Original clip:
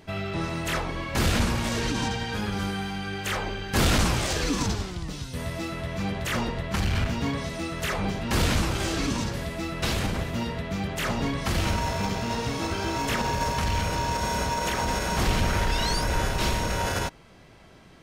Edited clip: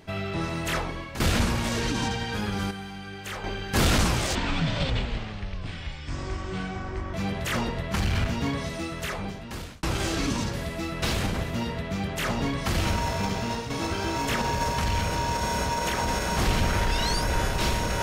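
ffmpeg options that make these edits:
-filter_complex "[0:a]asplit=8[s0][s1][s2][s3][s4][s5][s6][s7];[s0]atrim=end=1.2,asetpts=PTS-STARTPTS,afade=t=out:st=0.82:d=0.38:silence=0.281838[s8];[s1]atrim=start=1.2:end=2.712,asetpts=PTS-STARTPTS,afade=t=in:d=0.004:c=hsin:silence=0.281838[s9];[s2]atrim=start=2.708:end=3.442,asetpts=PTS-STARTPTS,volume=0.473[s10];[s3]atrim=start=3.438:end=4.354[s11];[s4]atrim=start=4.35:end=5.94,asetpts=PTS-STARTPTS,asetrate=25137,aresample=44100[s12];[s5]atrim=start=5.936:end=8.63,asetpts=PTS-STARTPTS,afade=t=out:st=1.604:d=1.09[s13];[s6]atrim=start=8.63:end=12.5,asetpts=PTS-STARTPTS,afade=t=in:d=0.004:c=hsin,afade=t=out:st=3.59:d=0.28:c=qsin:silence=0.375837[s14];[s7]atrim=start=12.5,asetpts=PTS-STARTPTS,afade=t=in:d=0.004:c=hsin:silence=0.375837[s15];[s8][s9]concat=n=2:v=0:a=1[s16];[s16][s10]acrossfade=d=0.004:c1=hsin:c2=hsin[s17];[s17][s11]acrossfade=d=0.004:c1=hsin:c2=hsin[s18];[s18][s12]acrossfade=d=0.004:c1=hsin:c2=hsin[s19];[s13][s14][s15]concat=n=3:v=0:a=1[s20];[s19][s20]acrossfade=d=0.004:c1=hsin:c2=hsin"

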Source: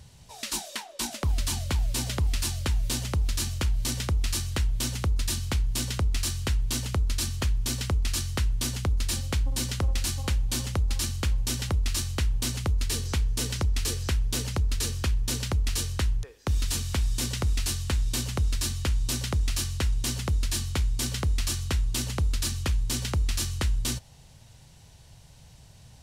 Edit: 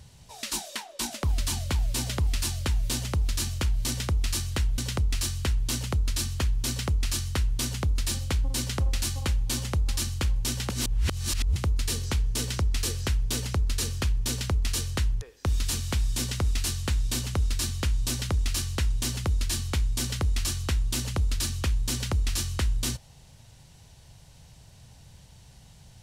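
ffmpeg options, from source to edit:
-filter_complex "[0:a]asplit=4[s0][s1][s2][s3];[s0]atrim=end=4.782[s4];[s1]atrim=start=5.798:end=11.722[s5];[s2]atrim=start=11.718:end=12.582,asetpts=PTS-STARTPTS,areverse[s6];[s3]atrim=start=12.578[s7];[s4][s5]acrossfade=d=0.004:c1=hsin:c2=hsin[s8];[s8][s6]acrossfade=d=0.004:c1=hsin:c2=hsin[s9];[s9][s7]acrossfade=d=0.004:c1=hsin:c2=hsin"

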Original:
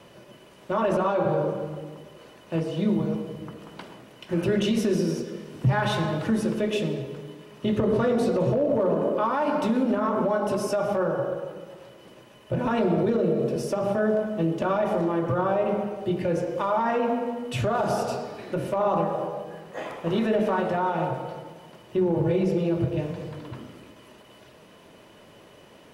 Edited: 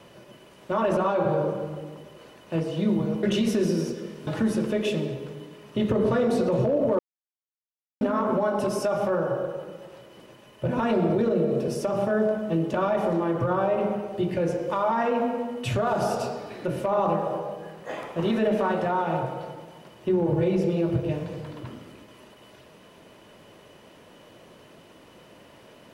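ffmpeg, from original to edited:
-filter_complex "[0:a]asplit=5[s0][s1][s2][s3][s4];[s0]atrim=end=3.232[s5];[s1]atrim=start=4.528:end=5.572[s6];[s2]atrim=start=6.148:end=8.87,asetpts=PTS-STARTPTS,afade=t=out:st=2.718:d=0.004:c=hsin[s7];[s3]atrim=start=8.87:end=9.89,asetpts=PTS-STARTPTS,volume=0[s8];[s4]atrim=start=9.89,asetpts=PTS-STARTPTS,afade=t=in:d=0.004:c=hsin[s9];[s5][s6]acrossfade=d=0.004:c1=hsin:c2=hsin[s10];[s7][s8][s9]concat=n=3:v=0:a=1[s11];[s10][s11]acrossfade=d=0.004:c1=hsin:c2=hsin"

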